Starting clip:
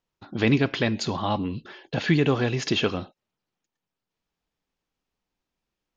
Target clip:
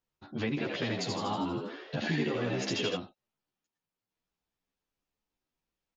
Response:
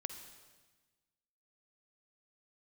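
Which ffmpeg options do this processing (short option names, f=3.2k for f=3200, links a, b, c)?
-filter_complex "[0:a]acompressor=threshold=-26dB:ratio=3,asplit=3[a][b][c];[a]afade=t=out:st=0.56:d=0.02[d];[b]asplit=9[e][f][g][h][i][j][k][l][m];[f]adelay=80,afreqshift=72,volume=-3dB[n];[g]adelay=160,afreqshift=144,volume=-7.9dB[o];[h]adelay=240,afreqshift=216,volume=-12.8dB[p];[i]adelay=320,afreqshift=288,volume=-17.6dB[q];[j]adelay=400,afreqshift=360,volume=-22.5dB[r];[k]adelay=480,afreqshift=432,volume=-27.4dB[s];[l]adelay=560,afreqshift=504,volume=-32.3dB[t];[m]adelay=640,afreqshift=576,volume=-37.2dB[u];[e][n][o][p][q][r][s][t][u]amix=inputs=9:normalize=0,afade=t=in:st=0.56:d=0.02,afade=t=out:st=2.95:d=0.02[v];[c]afade=t=in:st=2.95:d=0.02[w];[d][v][w]amix=inputs=3:normalize=0,asplit=2[x][y];[y]adelay=11.5,afreqshift=0.61[z];[x][z]amix=inputs=2:normalize=1,volume=-2dB"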